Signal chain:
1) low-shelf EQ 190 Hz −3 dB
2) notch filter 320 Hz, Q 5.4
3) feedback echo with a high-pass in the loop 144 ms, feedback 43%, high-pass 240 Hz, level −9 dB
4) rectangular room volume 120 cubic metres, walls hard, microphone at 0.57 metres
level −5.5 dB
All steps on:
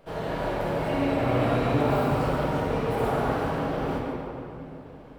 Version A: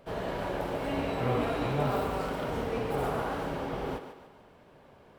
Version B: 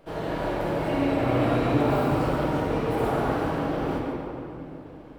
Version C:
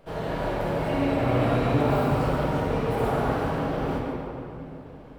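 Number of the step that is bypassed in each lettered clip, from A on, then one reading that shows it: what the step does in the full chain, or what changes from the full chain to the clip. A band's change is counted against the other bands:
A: 4, echo-to-direct ratio 4.0 dB to −8.5 dB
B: 2, 250 Hz band +2.0 dB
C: 1, 125 Hz band +2.0 dB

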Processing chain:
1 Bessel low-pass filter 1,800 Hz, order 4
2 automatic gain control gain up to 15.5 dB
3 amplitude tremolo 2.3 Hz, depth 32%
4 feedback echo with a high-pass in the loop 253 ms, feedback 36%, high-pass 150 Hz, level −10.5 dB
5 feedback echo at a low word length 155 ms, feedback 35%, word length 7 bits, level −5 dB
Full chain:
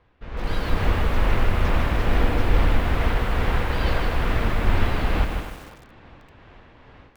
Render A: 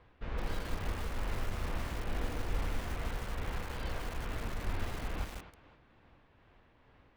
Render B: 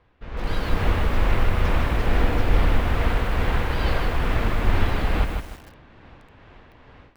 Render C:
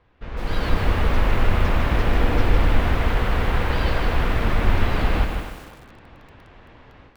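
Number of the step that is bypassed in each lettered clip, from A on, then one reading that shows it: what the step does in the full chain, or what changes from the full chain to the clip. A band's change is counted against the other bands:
2, change in momentary loudness spread −5 LU
4, change in momentary loudness spread −1 LU
3, change in integrated loudness +1.5 LU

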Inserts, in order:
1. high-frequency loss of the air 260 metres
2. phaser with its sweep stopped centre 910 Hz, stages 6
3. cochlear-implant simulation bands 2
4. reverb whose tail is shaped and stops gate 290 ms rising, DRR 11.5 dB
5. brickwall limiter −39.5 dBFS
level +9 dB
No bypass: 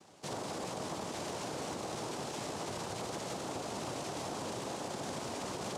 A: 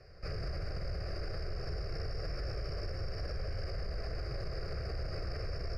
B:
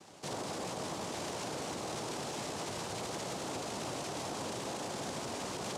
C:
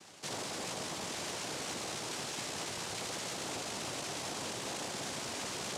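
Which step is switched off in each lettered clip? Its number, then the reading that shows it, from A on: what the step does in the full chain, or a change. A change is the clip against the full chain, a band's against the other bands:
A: 3, 8 kHz band −19.0 dB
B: 2, 4 kHz band +2.0 dB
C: 1, 4 kHz band +8.0 dB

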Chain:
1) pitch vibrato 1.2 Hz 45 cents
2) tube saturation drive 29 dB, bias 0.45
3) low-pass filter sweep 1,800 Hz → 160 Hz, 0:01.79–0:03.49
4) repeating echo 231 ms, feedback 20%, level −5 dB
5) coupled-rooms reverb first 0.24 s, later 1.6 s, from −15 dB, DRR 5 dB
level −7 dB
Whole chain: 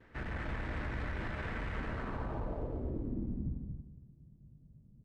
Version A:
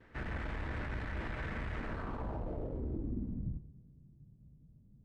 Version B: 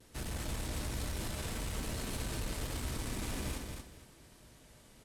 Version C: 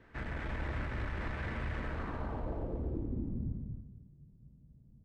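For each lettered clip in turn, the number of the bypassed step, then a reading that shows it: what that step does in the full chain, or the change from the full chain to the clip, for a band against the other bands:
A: 4, echo-to-direct ratio −1.0 dB to −5.0 dB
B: 3, 4 kHz band +14.5 dB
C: 1, change in momentary loudness spread −4 LU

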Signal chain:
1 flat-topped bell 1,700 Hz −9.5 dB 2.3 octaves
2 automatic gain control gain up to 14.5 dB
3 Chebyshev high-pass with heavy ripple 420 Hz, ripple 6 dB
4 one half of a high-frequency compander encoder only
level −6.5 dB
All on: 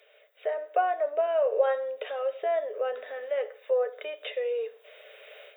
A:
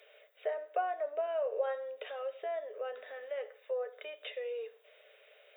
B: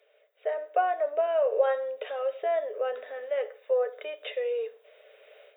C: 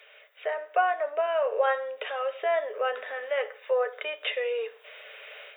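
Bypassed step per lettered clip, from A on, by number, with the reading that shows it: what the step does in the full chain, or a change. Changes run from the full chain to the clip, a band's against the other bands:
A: 2, change in integrated loudness −8.5 LU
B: 4, change in momentary loudness spread −2 LU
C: 1, change in momentary loudness spread +1 LU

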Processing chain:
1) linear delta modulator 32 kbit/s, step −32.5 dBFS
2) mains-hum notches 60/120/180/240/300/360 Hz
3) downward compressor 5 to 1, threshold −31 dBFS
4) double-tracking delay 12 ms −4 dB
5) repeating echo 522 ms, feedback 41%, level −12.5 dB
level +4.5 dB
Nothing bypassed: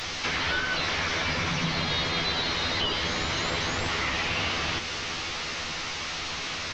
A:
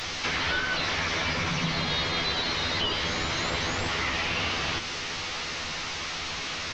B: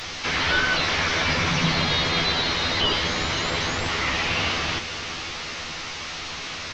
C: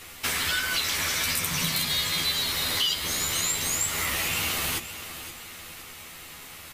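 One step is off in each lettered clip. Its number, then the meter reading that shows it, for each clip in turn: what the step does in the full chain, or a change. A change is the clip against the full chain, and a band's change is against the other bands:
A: 5, echo-to-direct ratio −11.5 dB to none audible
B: 3, average gain reduction 3.0 dB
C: 1, 8 kHz band +15.0 dB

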